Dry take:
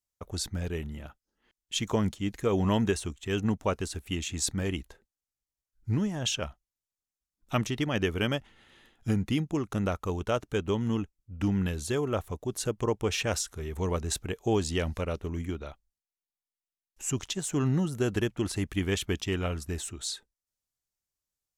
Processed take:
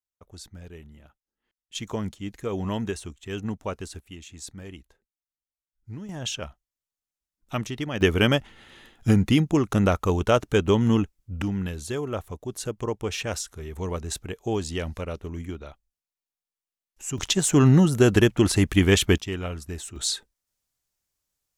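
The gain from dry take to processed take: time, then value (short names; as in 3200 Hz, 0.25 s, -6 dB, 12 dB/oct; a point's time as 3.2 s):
-10 dB
from 1.75 s -3 dB
from 4 s -10 dB
from 6.09 s -1 dB
from 8.01 s +8.5 dB
from 11.42 s -0.5 dB
from 17.18 s +10.5 dB
from 19.18 s -0.5 dB
from 19.96 s +8 dB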